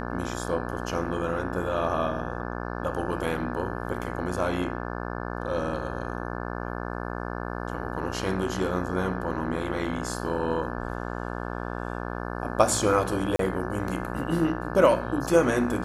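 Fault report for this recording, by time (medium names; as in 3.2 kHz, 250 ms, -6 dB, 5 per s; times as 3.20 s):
buzz 60 Hz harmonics 29 -33 dBFS
13.36–13.39 s: dropout 33 ms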